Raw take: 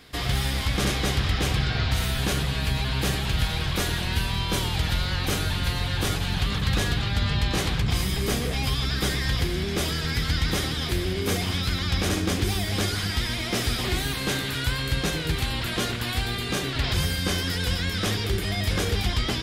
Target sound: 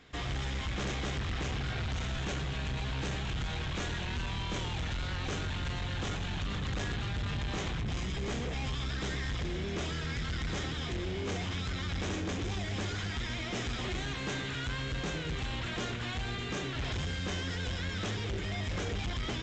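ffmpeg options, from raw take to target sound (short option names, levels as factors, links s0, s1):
-af "equalizer=f=4700:t=o:w=0.49:g=-10,aresample=16000,asoftclip=type=hard:threshold=0.0531,aresample=44100,volume=0.501"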